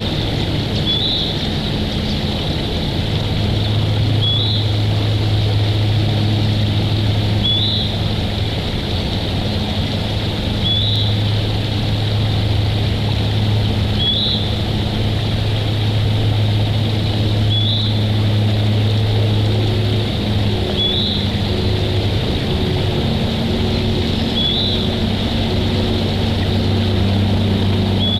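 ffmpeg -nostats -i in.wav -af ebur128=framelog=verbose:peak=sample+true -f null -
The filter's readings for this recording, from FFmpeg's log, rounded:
Integrated loudness:
  I:         -17.1 LUFS
  Threshold: -27.1 LUFS
Loudness range:
  LRA:         1.8 LU
  Threshold: -37.1 LUFS
  LRA low:   -18.0 LUFS
  LRA high:  -16.2 LUFS
Sample peak:
  Peak:       -7.4 dBFS
True peak:
  Peak:       -7.3 dBFS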